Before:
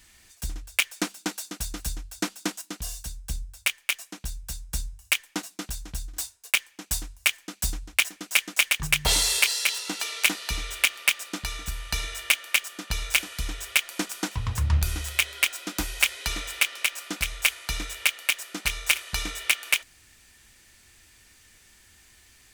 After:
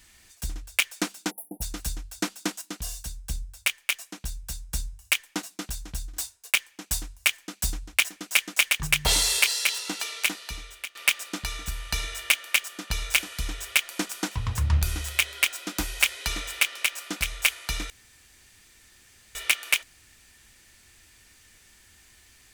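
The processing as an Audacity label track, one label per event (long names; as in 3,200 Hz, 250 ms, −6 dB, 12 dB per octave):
1.310000	1.620000	time-frequency box erased 910–9,700 Hz
9.870000	10.950000	fade out, to −20 dB
17.900000	19.350000	fill with room tone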